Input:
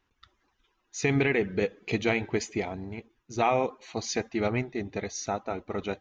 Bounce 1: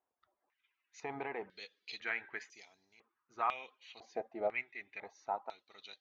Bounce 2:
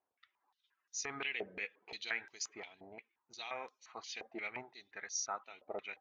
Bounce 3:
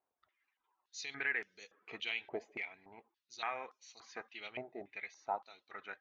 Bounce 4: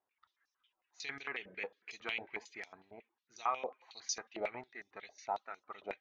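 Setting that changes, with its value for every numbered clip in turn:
stepped band-pass, rate: 2, 5.7, 3.5, 11 Hz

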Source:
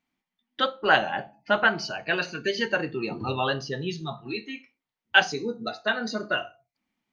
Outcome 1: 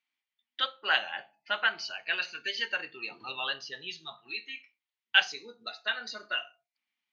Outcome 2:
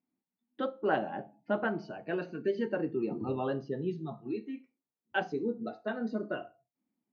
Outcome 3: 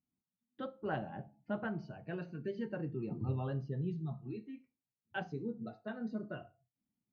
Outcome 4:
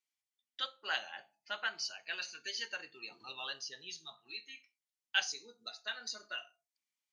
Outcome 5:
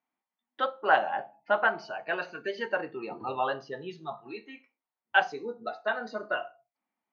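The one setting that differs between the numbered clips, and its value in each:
band-pass, frequency: 3000, 290, 110, 7700, 830 Hz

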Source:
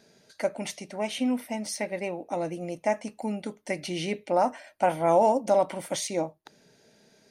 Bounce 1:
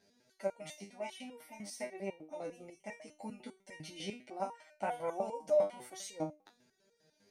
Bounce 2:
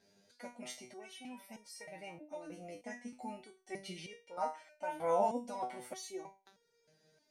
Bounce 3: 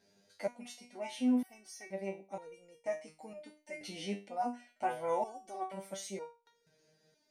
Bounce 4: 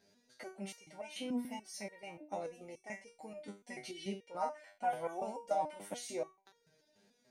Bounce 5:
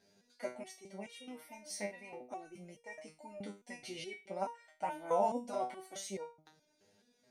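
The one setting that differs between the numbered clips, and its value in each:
stepped resonator, rate: 10, 3.2, 2.1, 6.9, 4.7 Hz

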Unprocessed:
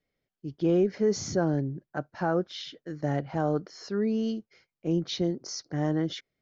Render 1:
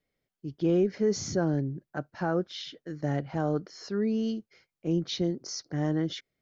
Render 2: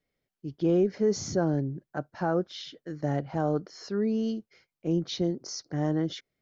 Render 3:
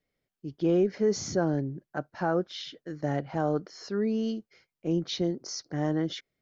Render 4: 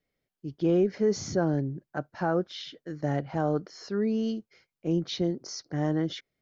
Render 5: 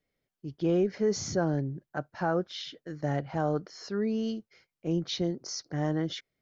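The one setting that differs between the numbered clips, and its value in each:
dynamic EQ, frequency: 790, 2200, 100, 8100, 290 Hz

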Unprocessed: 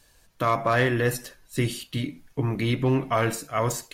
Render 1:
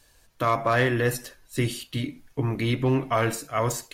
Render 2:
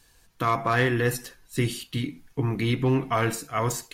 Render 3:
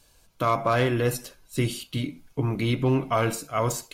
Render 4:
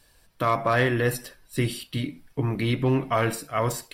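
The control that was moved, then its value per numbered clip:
notch, frequency: 180, 590, 1800, 6600 Hz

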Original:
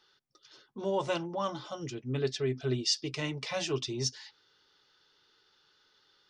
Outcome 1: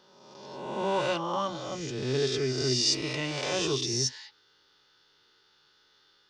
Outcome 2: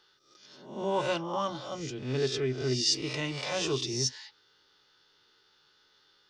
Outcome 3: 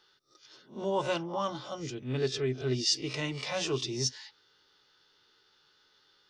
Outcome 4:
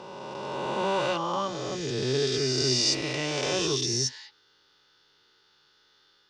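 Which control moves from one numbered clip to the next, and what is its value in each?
spectral swells, rising 60 dB in: 1.41, 0.63, 0.3, 2.94 s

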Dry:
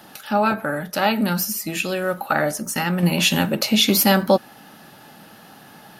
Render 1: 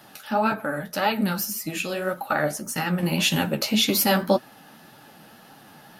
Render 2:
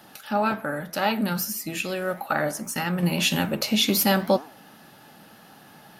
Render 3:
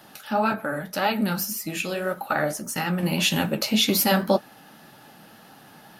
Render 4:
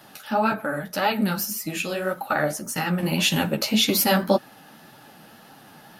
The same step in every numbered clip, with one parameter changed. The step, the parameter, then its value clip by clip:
flange, regen: +33, +90, -47, -7%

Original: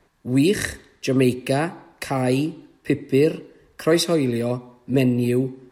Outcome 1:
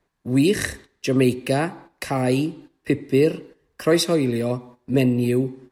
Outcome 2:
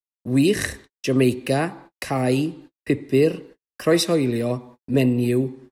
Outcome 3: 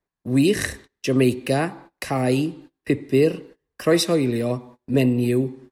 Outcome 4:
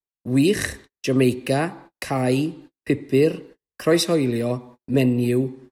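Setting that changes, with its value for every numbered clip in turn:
gate, range: -11, -55, -24, -42 dB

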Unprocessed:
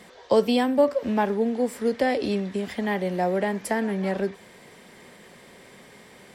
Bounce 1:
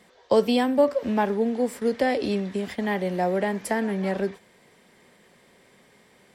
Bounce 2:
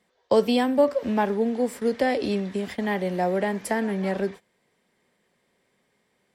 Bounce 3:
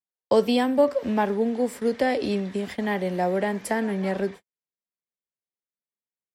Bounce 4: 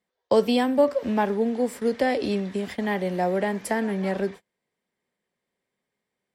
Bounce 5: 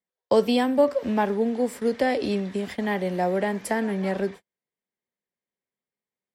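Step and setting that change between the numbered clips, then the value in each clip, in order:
gate, range: -8, -21, -58, -34, -46 dB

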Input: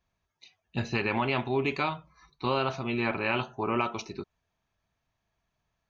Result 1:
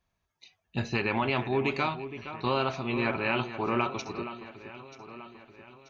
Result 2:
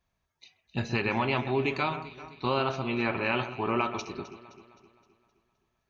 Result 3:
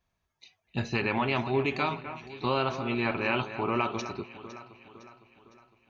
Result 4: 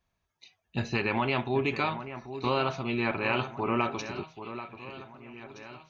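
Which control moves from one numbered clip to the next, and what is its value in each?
echo with dull and thin repeats by turns, time: 0.467, 0.13, 0.254, 0.785 s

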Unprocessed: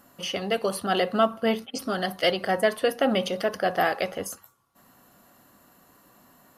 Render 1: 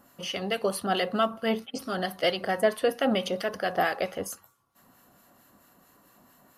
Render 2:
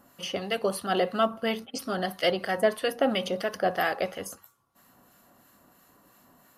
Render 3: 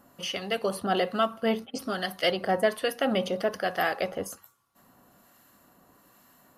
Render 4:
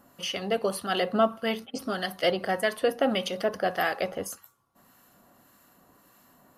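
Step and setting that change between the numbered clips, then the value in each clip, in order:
harmonic tremolo, rate: 4.5, 3, 1.2, 1.7 Hz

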